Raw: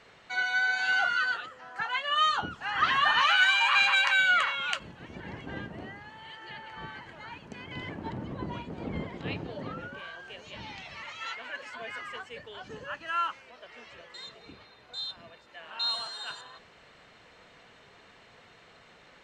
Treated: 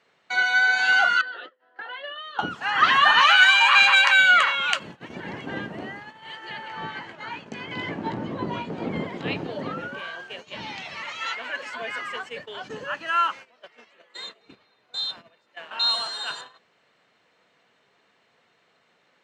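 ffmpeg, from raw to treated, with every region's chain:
-filter_complex "[0:a]asettb=1/sr,asplit=3[s0][s1][s2];[s0]atrim=end=1.214[s3];[s1]atrim=start=1.21:end=2.39,asetpts=PTS-STARTPTS,afade=t=in:d=0.004:c=qsin,afade=t=out:st=1.176:d=0.004:c=qsin,agate=range=0.0224:threshold=0.00708:ratio=3:release=100:detection=peak,acompressor=threshold=0.0158:ratio=6:attack=3.2:release=140:knee=1:detection=peak,highpass=f=260:w=0.5412,highpass=f=260:w=1.3066,equalizer=f=360:t=q:w=4:g=3,equalizer=f=530:t=q:w=4:g=4,equalizer=f=840:t=q:w=4:g=-6,equalizer=f=1200:t=q:w=4:g=-9,equalizer=f=2400:t=q:w=4:g=-10,lowpass=f=3600:w=0.5412,lowpass=f=3600:w=1.3066[s4];[s2]atrim=start=2.386[s5];[s3][s4]acrossfade=d=0.004:c1=hsin:c2=qsin[s6];[s6][s5]acrossfade=d=0.004:c1=qsin:c2=hsin,asettb=1/sr,asplit=3[s7][s8][s9];[s7]atrim=end=6.684[s10];[s8]atrim=start=6.68:end=8.89,asetpts=PTS-STARTPTS,afade=t=in:d=0.004:c=qsin,afade=t=out:st=2.206:d=0.004:c=qsin,lowpass=7800,asplit=2[s11][s12];[s12]adelay=18,volume=0.473[s13];[s11][s13]amix=inputs=2:normalize=0,atrim=end_sample=97461[s14];[s9]atrim=start=8.886[s15];[s10][s14]acrossfade=d=0.004:c1=hsin:c2=qsin[s16];[s16][s15]acrossfade=d=0.004:c1=qsin:c2=hsin,asettb=1/sr,asplit=3[s17][s18][s19];[s17]atrim=end=13.914[s20];[s18]atrim=start=13.91:end=14.41,asetpts=PTS-STARTPTS,afade=t=in:d=0.004:c=qsin,afade=t=out:st=0.496:d=0.004:c=qsin,highpass=f=190:w=0.5412,highpass=f=190:w=1.3066,equalizer=f=5400:t=o:w=0.21:g=-10[s21];[s19]atrim=start=14.406[s22];[s20][s21]acrossfade=d=0.004:c1=hsin:c2=qsin[s23];[s23][s22]acrossfade=d=0.004:c1=qsin:c2=hsin,agate=range=0.158:threshold=0.00501:ratio=16:detection=peak,highpass=160,volume=2.37"

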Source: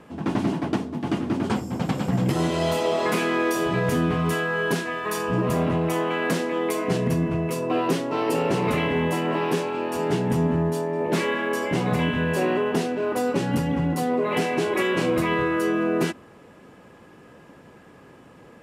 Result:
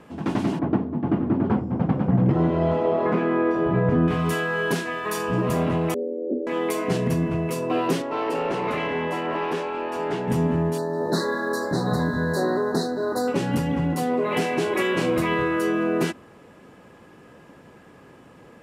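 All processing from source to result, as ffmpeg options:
-filter_complex "[0:a]asettb=1/sr,asplit=3[s0][s1][s2];[s0]atrim=end=0.594[s3];[s1]atrim=start=0.59:end=4.08,asetpts=PTS-STARTPTS,afade=t=in:d=0.004:c=qsin,afade=t=out:st=3.486:d=0.004:c=qsin,lowpass=1400,lowshelf=f=390:g=4.5[s4];[s2]atrim=start=4.076[s5];[s3][s4]acrossfade=d=0.004:c1=hsin:c2=qsin[s6];[s6][s5]acrossfade=d=0.004:c1=qsin:c2=hsin,asettb=1/sr,asplit=3[s7][s8][s9];[s7]atrim=end=5.944[s10];[s8]atrim=start=5.94:end=6.47,asetpts=PTS-STARTPTS,afade=t=in:d=0.004:c=qsin,afade=t=out:st=0.526:d=0.004:c=qsin,afreqshift=80,asuperpass=centerf=290:order=12:qfactor=0.74[s11];[s9]atrim=start=6.466[s12];[s10][s11]acrossfade=d=0.004:c1=hsin:c2=qsin[s13];[s13][s12]acrossfade=d=0.004:c1=qsin:c2=hsin,asettb=1/sr,asplit=3[s14][s15][s16];[s14]atrim=end=8.024[s17];[s15]atrim=start=8.02:end=10.28,asetpts=PTS-STARTPTS,afade=t=in:d=0.004:c=qsin,afade=t=out:st=2.256:d=0.004:c=qsin,equalizer=f=66:w=0.38:g=-6,asoftclip=type=hard:threshold=0.158,asplit=2[s18][s19];[s19]highpass=f=720:p=1,volume=2.51,asoftclip=type=tanh:threshold=0.158[s20];[s18][s20]amix=inputs=2:normalize=0,lowpass=f=1600:p=1,volume=0.501[s21];[s16]atrim=start=10.276[s22];[s17][s21]acrossfade=d=0.004:c1=hsin:c2=qsin[s23];[s23][s22]acrossfade=d=0.004:c1=qsin:c2=hsin,asettb=1/sr,asplit=3[s24][s25][s26];[s24]atrim=end=10.784[s27];[s25]atrim=start=10.78:end=13.28,asetpts=PTS-STARTPTS,afade=t=in:d=0.004:c=qsin,afade=t=out:st=2.496:d=0.004:c=qsin,equalizer=f=4000:t=o:w=0.25:g=14,aeval=exprs='sgn(val(0))*max(abs(val(0))-0.00266,0)':c=same,asuperstop=centerf=2700:order=12:qfactor=1.3[s28];[s26]atrim=start=13.276[s29];[s27][s28]acrossfade=d=0.004:c1=hsin:c2=qsin[s30];[s30][s29]acrossfade=d=0.004:c1=qsin:c2=hsin"

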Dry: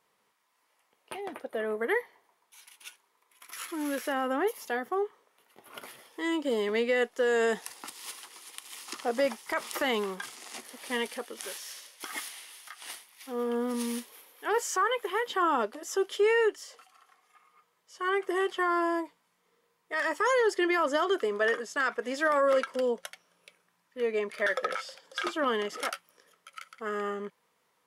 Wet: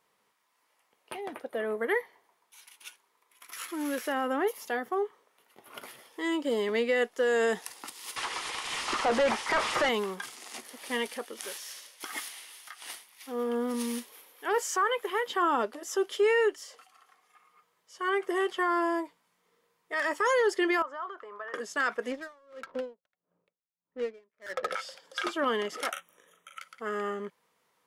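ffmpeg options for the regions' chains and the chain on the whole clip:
-filter_complex "[0:a]asettb=1/sr,asplit=3[s0][s1][s2];[s0]atrim=end=8.164[s3];[s1]atrim=start=8.16:end=9.89,asetpts=PTS-STARTPTS,afade=t=in:d=0.004:c=qsin,afade=t=out:st=1.726:d=0.004:c=qsin,asplit=2[s4][s5];[s5]highpass=f=720:p=1,volume=39.8,asoftclip=type=tanh:threshold=0.15[s6];[s4][s6]amix=inputs=2:normalize=0,lowpass=f=1500:p=1,volume=0.501,lowpass=f=10000:w=0.5412,lowpass=f=10000:w=1.3066,equalizer=f=89:w=0.31:g=-5[s7];[s2]atrim=start=9.886[s8];[s3][s7]acrossfade=d=0.004:c1=hsin:c2=qsin[s9];[s9][s8]acrossfade=d=0.004:c1=qsin:c2=hsin,asettb=1/sr,asplit=3[s10][s11][s12];[s10]atrim=end=20.824[s13];[s11]atrim=start=20.82:end=21.54,asetpts=PTS-STARTPTS,afade=t=in:d=0.004:c=qsin,afade=t=out:st=0.716:d=0.004:c=qsin,acompressor=threshold=0.0398:ratio=3:attack=3.2:release=140:knee=1:detection=peak,bandpass=f=1100:t=q:w=2.6[s14];[s12]atrim=start=21.536[s15];[s13][s14]acrossfade=d=0.004:c1=hsin:c2=qsin[s16];[s16][s15]acrossfade=d=0.004:c1=qsin:c2=hsin,asettb=1/sr,asplit=3[s17][s18][s19];[s17]atrim=end=22.114[s20];[s18]atrim=start=22.11:end=24.71,asetpts=PTS-STARTPTS,afade=t=in:d=0.004:c=qsin,afade=t=out:st=2.596:d=0.004:c=qsin,adynamicsmooth=sensitivity=6.5:basefreq=620,aeval=exprs='val(0)*pow(10,-37*(0.5-0.5*cos(2*PI*1.6*n/s))/20)':c=same[s21];[s19]atrim=start=24.706[s22];[s20][s21]acrossfade=d=0.004:c1=hsin:c2=qsin[s23];[s23][s22]acrossfade=d=0.004:c1=qsin:c2=hsin,asettb=1/sr,asplit=3[s24][s25][s26];[s24]atrim=end=25.924[s27];[s25]atrim=start=25.92:end=26.59,asetpts=PTS-STARTPTS,afade=t=in:d=0.004:c=qsin,afade=t=out:st=0.666:d=0.004:c=qsin,asuperstop=centerf=4700:order=20:qfactor=2.6,asplit=2[s28][s29];[s29]adelay=40,volume=0.562[s30];[s28][s30]amix=inputs=2:normalize=0,atrim=end_sample=29547[s31];[s26]atrim=start=26.586[s32];[s27][s31]acrossfade=d=0.004:c1=hsin:c2=qsin[s33];[s33][s32]acrossfade=d=0.004:c1=qsin:c2=hsin"

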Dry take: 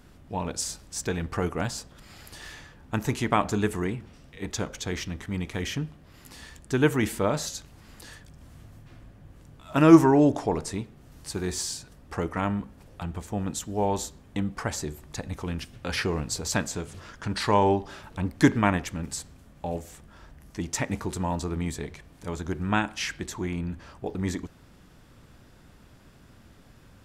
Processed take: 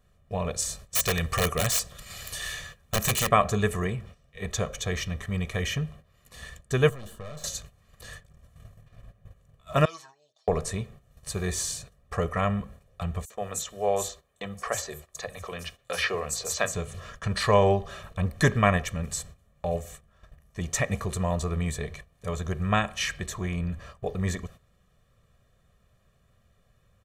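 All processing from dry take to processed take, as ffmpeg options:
-filter_complex "[0:a]asettb=1/sr,asplit=3[s0][s1][s2];[s0]atrim=end=0.954[s3];[s1]atrim=start=0.95:end=3.29,asetpts=PTS-STARTPTS,afade=t=in:d=0.004:c=qsin,afade=t=out:st=2.336:d=0.004:c=qsin,highshelf=f=2400:g=11.5,aeval=exprs='(mod(8.91*val(0)+1,2)-1)/8.91':c=same[s4];[s2]atrim=start=3.286[s5];[s3][s4]acrossfade=d=0.004:c1=hsin:c2=qsin[s6];[s6][s5]acrossfade=d=0.004:c1=qsin:c2=hsin,asettb=1/sr,asplit=3[s7][s8][s9];[s7]atrim=end=6.894[s10];[s8]atrim=start=6.89:end=7.44,asetpts=PTS-STARTPTS,afade=t=in:d=0.004:c=qsin,afade=t=out:st=0.546:d=0.004:c=qsin,asuperstop=centerf=2200:order=12:qfactor=2.1,aeval=exprs='(tanh(44.7*val(0)+0.55)-tanh(0.55))/44.7':c=same,acrossover=split=240|3200[s11][s12][s13];[s11]acompressor=threshold=0.00794:ratio=4[s14];[s12]acompressor=threshold=0.00562:ratio=4[s15];[s13]acompressor=threshold=0.00178:ratio=4[s16];[s14][s15][s16]amix=inputs=3:normalize=0[s17];[s9]atrim=start=7.436[s18];[s10][s17]acrossfade=d=0.004:c1=hsin:c2=qsin[s19];[s19][s18]acrossfade=d=0.004:c1=qsin:c2=hsin,asettb=1/sr,asplit=3[s20][s21][s22];[s20]atrim=end=9.854[s23];[s21]atrim=start=9.85:end=10.48,asetpts=PTS-STARTPTS,afade=t=in:d=0.004:c=qsin,afade=t=out:st=0.626:d=0.004:c=qsin,bandpass=f=4400:t=q:w=6,aecho=1:1:6.3:1,atrim=end_sample=27783[s24];[s22]atrim=start=10.476[s25];[s23][s24]acrossfade=d=0.004:c1=hsin:c2=qsin[s26];[s26][s25]acrossfade=d=0.004:c1=qsin:c2=hsin,asettb=1/sr,asplit=3[s27][s28][s29];[s27]atrim=end=13.254[s30];[s28]atrim=start=13.25:end=16.74,asetpts=PTS-STARTPTS,afade=t=in:d=0.004:c=qsin,afade=t=out:st=3.486:d=0.004:c=qsin,bass=f=250:g=-13,treble=f=4000:g=2,acrossover=split=160|6000[s31][s32][s33];[s32]adelay=50[s34];[s31]adelay=90[s35];[s35][s34][s33]amix=inputs=3:normalize=0,atrim=end_sample=153909[s36];[s29]atrim=start=16.736[s37];[s30][s36]acrossfade=d=0.004:c1=hsin:c2=qsin[s38];[s38][s37]acrossfade=d=0.004:c1=qsin:c2=hsin,bandreject=f=5000:w=5.7,agate=range=0.2:threshold=0.00501:ratio=16:detection=peak,aecho=1:1:1.7:0.84"

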